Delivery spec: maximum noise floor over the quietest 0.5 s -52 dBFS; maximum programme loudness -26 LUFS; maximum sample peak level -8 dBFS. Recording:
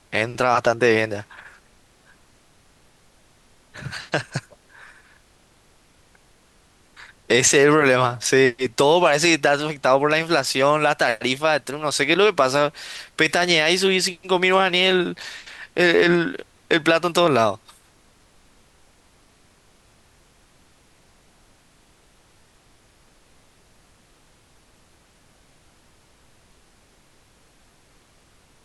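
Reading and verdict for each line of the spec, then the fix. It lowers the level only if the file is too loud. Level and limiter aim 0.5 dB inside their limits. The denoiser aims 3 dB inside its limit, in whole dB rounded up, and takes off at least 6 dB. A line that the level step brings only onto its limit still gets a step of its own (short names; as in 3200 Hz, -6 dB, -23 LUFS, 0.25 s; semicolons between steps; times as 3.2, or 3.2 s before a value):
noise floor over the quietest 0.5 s -56 dBFS: OK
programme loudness -18.5 LUFS: fail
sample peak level -5.0 dBFS: fail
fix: gain -8 dB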